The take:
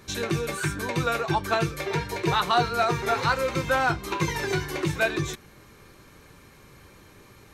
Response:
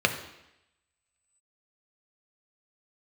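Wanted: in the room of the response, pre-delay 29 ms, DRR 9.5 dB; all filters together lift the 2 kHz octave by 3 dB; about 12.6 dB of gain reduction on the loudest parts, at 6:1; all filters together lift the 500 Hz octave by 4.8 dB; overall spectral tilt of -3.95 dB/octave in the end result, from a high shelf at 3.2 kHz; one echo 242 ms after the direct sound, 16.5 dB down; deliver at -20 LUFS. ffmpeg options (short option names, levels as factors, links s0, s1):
-filter_complex "[0:a]equalizer=f=500:t=o:g=6,equalizer=f=2000:t=o:g=6,highshelf=f=3200:g=-7,acompressor=threshold=0.0355:ratio=6,aecho=1:1:242:0.15,asplit=2[s0][s1];[1:a]atrim=start_sample=2205,adelay=29[s2];[s1][s2]afir=irnorm=-1:irlink=0,volume=0.0631[s3];[s0][s3]amix=inputs=2:normalize=0,volume=3.98"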